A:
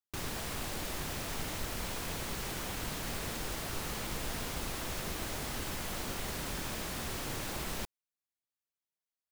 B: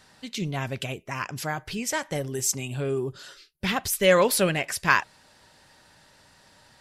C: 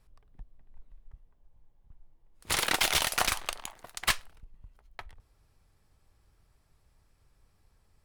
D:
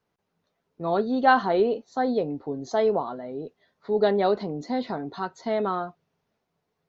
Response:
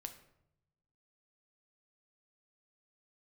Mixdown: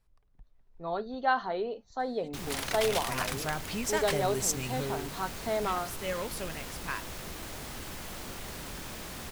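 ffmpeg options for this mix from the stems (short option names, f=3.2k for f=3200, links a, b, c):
-filter_complex "[0:a]asoftclip=type=hard:threshold=-32dB,adelay=2200,volume=-2.5dB[a];[1:a]acompressor=mode=upward:threshold=-41dB:ratio=2.5,adelay=2000,volume=-4dB,afade=t=in:st=2.78:d=0.33:silence=0.266073,afade=t=out:st=4.69:d=0.37:silence=0.237137[b];[2:a]volume=-8dB[c];[3:a]equalizer=f=270:t=o:w=1.6:g=-7.5,bandreject=f=50:t=h:w=6,bandreject=f=100:t=h:w=6,bandreject=f=150:t=h:w=6,bandreject=f=200:t=h:w=6,dynaudnorm=f=220:g=5:m=11.5dB,volume=-13.5dB[d];[a][b][c][d]amix=inputs=4:normalize=0"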